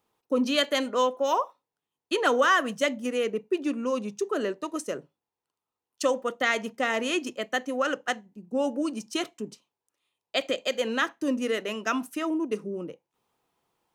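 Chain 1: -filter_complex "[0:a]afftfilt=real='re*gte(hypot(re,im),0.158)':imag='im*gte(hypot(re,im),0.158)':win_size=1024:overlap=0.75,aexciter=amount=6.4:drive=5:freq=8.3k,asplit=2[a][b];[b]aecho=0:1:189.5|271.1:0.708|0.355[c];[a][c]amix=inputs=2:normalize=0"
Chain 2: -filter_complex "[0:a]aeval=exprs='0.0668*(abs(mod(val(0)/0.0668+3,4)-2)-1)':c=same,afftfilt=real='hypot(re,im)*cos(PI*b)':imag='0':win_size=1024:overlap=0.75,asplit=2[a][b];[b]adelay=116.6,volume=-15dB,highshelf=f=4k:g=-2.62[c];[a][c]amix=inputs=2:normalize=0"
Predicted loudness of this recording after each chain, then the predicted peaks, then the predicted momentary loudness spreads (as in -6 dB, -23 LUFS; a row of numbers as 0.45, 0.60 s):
-27.0, -35.0 LUFS; -8.5, -11.0 dBFS; 11, 7 LU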